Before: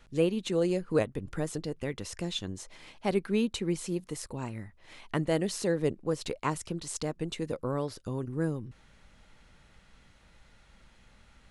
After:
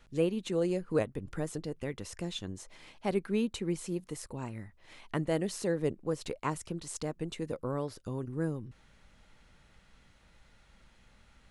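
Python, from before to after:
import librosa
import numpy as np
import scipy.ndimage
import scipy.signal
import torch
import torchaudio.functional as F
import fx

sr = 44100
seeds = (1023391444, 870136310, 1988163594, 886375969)

y = fx.dynamic_eq(x, sr, hz=4200.0, q=0.89, threshold_db=-52.0, ratio=4.0, max_db=-3)
y = y * librosa.db_to_amplitude(-2.5)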